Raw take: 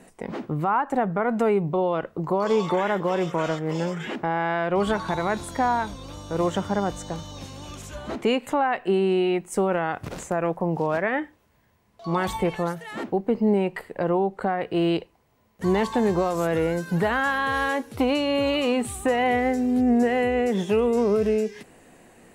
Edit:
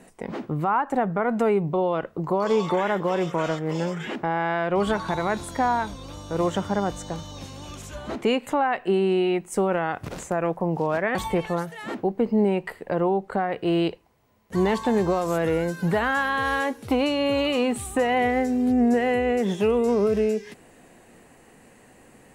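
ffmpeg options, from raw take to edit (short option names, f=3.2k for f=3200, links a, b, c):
-filter_complex "[0:a]asplit=2[a][b];[a]atrim=end=11.152[c];[b]atrim=start=12.238[d];[c][d]acrossfade=d=0.004:c1=hsin:c2=hsin"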